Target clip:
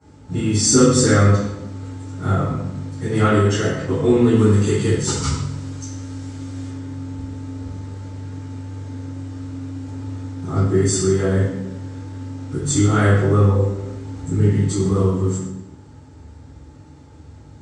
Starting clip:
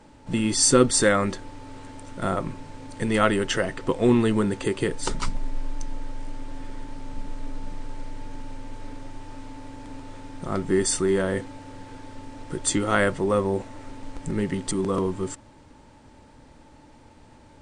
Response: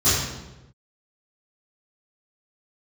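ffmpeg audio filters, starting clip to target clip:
-filter_complex "[0:a]asettb=1/sr,asplit=3[s0][s1][s2];[s0]atrim=end=4.344[s3];[s1]atrim=start=4.34:end=6.68,asetpts=PTS-STARTPTS,afade=t=in:d=0.004:c=qsin,afade=t=out:st=2.336:d=0.004:c=qsin,highshelf=f=2800:g=8[s4];[s2]atrim=start=6.676[s5];[s3][s4]acrossfade=d=0.004:c1=hsin:c2=qsin[s6];[s6][s5]acrossfade=d=0.004:c1=qsin:c2=hsin[s7];[1:a]atrim=start_sample=2205,asetrate=48510,aresample=44100[s8];[s7][s8]afir=irnorm=-1:irlink=0,volume=0.158"

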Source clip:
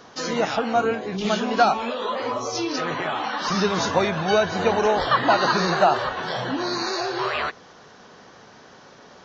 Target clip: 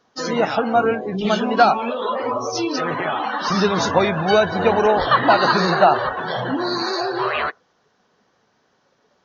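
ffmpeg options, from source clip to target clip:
-af "afftdn=nr=20:nf=-32,volume=1.58"

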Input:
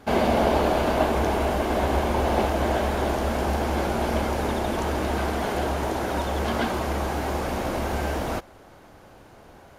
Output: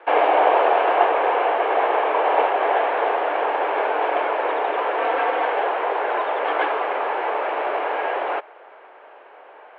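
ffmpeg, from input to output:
-filter_complex "[0:a]asettb=1/sr,asplit=3[s0][s1][s2];[s0]atrim=end=4.984[s3];[s1]atrim=start=4.98:end=5.45,asetpts=PTS-STARTPTS,afade=t=in:d=0.004:c=qsin,afade=t=out:st=0.466:d=0.004:c=qsin,aecho=1:1:4.7:0.65,atrim=end_sample=20727[s4];[s2]atrim=start=5.446[s5];[s3][s4]acrossfade=d=0.004:c1=hsin:c2=qsin[s6];[s6][s5]acrossfade=d=0.004:c1=qsin:c2=hsin,highpass=f=360:t=q:w=0.5412,highpass=f=360:t=q:w=1.307,lowpass=f=2800:t=q:w=0.5176,lowpass=f=2800:t=q:w=0.7071,lowpass=f=2800:t=q:w=1.932,afreqshift=75,volume=2"

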